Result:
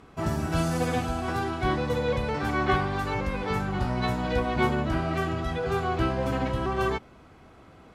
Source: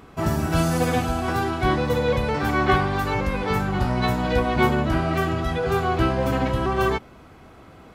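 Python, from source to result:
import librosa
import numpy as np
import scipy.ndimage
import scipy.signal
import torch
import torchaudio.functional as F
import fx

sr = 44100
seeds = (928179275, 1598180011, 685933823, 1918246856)

y = scipy.signal.sosfilt(scipy.signal.butter(2, 11000.0, 'lowpass', fs=sr, output='sos'), x)
y = y * librosa.db_to_amplitude(-5.0)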